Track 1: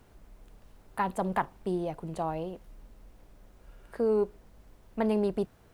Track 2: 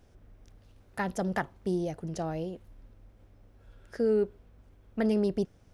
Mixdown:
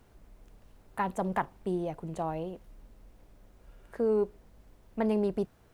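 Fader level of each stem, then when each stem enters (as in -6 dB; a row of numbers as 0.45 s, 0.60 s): -2.5 dB, -15.5 dB; 0.00 s, 0.00 s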